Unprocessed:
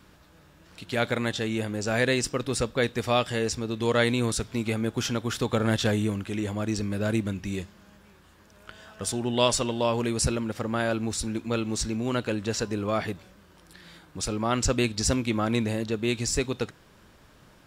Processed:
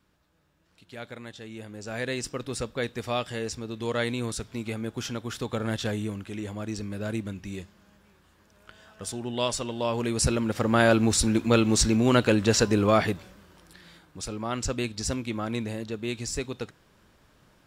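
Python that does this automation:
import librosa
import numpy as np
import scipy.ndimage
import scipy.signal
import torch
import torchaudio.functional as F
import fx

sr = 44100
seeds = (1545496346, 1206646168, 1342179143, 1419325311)

y = fx.gain(x, sr, db=fx.line((1.36, -14.0), (2.29, -5.0), (9.64, -5.0), (10.84, 7.0), (12.84, 7.0), (14.17, -5.0)))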